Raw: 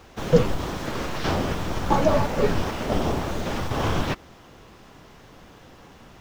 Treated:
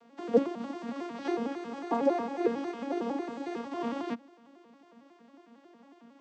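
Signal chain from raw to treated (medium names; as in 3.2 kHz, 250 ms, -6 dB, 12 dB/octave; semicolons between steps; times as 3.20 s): vocoder on a broken chord minor triad, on A#3, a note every 91 ms; 1.22–3.66 s: comb 2.4 ms, depth 46%; trim -6 dB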